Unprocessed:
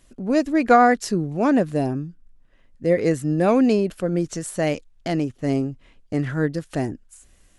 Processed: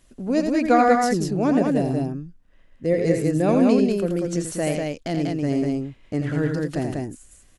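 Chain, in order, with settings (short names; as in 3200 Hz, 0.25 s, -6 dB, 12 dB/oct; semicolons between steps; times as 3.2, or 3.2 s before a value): dynamic EQ 1300 Hz, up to -5 dB, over -33 dBFS, Q 0.87; loudspeakers at several distances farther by 29 m -6 dB, 66 m -3 dB; gain -1.5 dB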